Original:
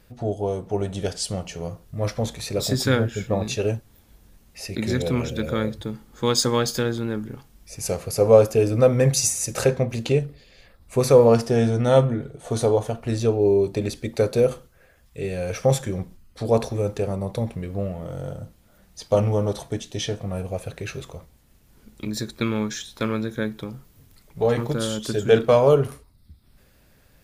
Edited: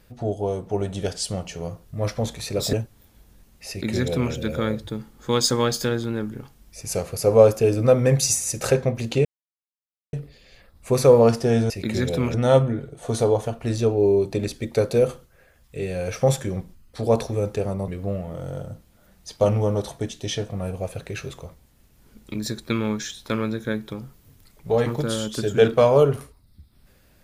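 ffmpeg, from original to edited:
-filter_complex "[0:a]asplit=6[s0][s1][s2][s3][s4][s5];[s0]atrim=end=2.732[s6];[s1]atrim=start=3.668:end=10.19,asetpts=PTS-STARTPTS,afade=t=out:st=6.518:d=0.004:c=hsin,apad=pad_dur=0.88[s7];[s2]atrim=start=10.19:end=11.762,asetpts=PTS-STARTPTS,afade=t=in:d=0.004:c=hsin[s8];[s3]atrim=start=4.628:end=5.272[s9];[s4]atrim=start=11.758:end=17.302[s10];[s5]atrim=start=17.588[s11];[s7][s8]concat=n=2:v=0:a=1[s12];[s6][s12]acrossfade=d=0.004:c1=hsin:c2=hsin[s13];[s13][s9]acrossfade=d=0.004:c1=hsin:c2=hsin[s14];[s14][s10]acrossfade=d=0.004:c1=hsin:c2=hsin[s15];[s15][s11]acrossfade=d=0.004:c1=hsin:c2=hsin"

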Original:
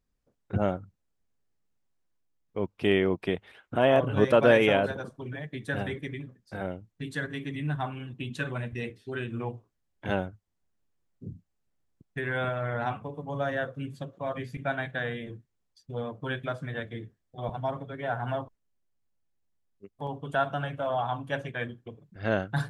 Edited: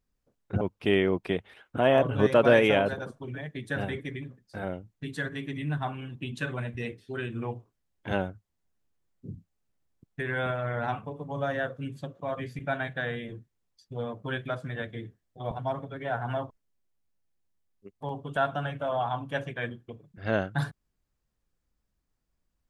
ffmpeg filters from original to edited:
-filter_complex "[0:a]asplit=2[s0][s1];[s0]atrim=end=0.612[s2];[s1]atrim=start=2.588[s3];[s2][s3]acrossfade=d=0.004:c1=hsin:c2=hsin"

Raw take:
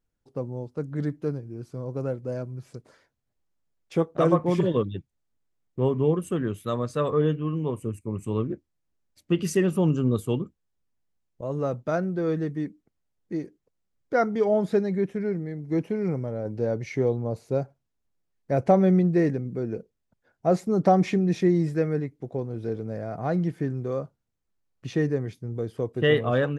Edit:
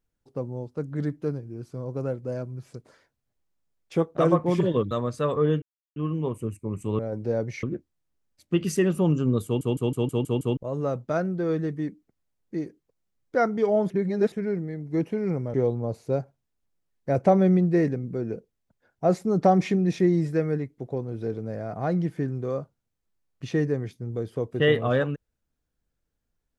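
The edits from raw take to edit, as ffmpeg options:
-filter_complex "[0:a]asplit=15[s0][s1][s2][s3][s4][s5][s6][s7][s8][s9][s10][s11][s12][s13][s14];[s0]atrim=end=4.912[s15];[s1]atrim=start=6.668:end=7.38,asetpts=PTS-STARTPTS,afade=t=out:st=0.708:d=0.004:c=hsin,apad=pad_dur=0.34[s16];[s2]atrim=start=7.38:end=8.412,asetpts=PTS-STARTPTS,afade=t=in:d=0.004:c=hsin[s17];[s3]atrim=start=16.318:end=16.962[s18];[s4]atrim=start=8.408:end=10.392[s19];[s5]atrim=start=10.228:end=10.392[s20];[s6]atrim=start=10.228:end=10.392[s21];[s7]atrim=start=10.228:end=10.392[s22];[s8]atrim=start=10.228:end=10.392[s23];[s9]atrim=start=10.228:end=10.392[s24];[s10]atrim=start=10.228:end=10.392[s25];[s11]atrim=start=11.348:end=14.682[s26];[s12]atrim=start=14.678:end=15.102,asetpts=PTS-STARTPTS,areverse[s27];[s13]atrim=start=15.098:end=16.322[s28];[s14]atrim=start=16.958[s29];[s16][s17]concat=n=2:v=0:a=1[s30];[s15][s30]acrossfade=d=0.004:c1=hsin:c2=hsin[s31];[s31][s18]acrossfade=d=0.004:c1=hsin:c2=hsin[s32];[s32][s19]acrossfade=d=0.004:c1=hsin:c2=hsin[s33];[s33][s20]acrossfade=d=0.004:c1=hsin:c2=hsin[s34];[s34][s21]acrossfade=d=0.004:c1=hsin:c2=hsin[s35];[s35][s22]acrossfade=d=0.004:c1=hsin:c2=hsin[s36];[s36][s23]acrossfade=d=0.004:c1=hsin:c2=hsin[s37];[s37][s24]acrossfade=d=0.004:c1=hsin:c2=hsin[s38];[s38][s25]acrossfade=d=0.004:c1=hsin:c2=hsin[s39];[s39][s26]acrossfade=d=0.004:c1=hsin:c2=hsin[s40];[s40][s27]acrossfade=d=0.004:c1=hsin:c2=hsin[s41];[s41][s28]acrossfade=d=0.004:c1=hsin:c2=hsin[s42];[s42][s29]acrossfade=d=0.004:c1=hsin:c2=hsin"

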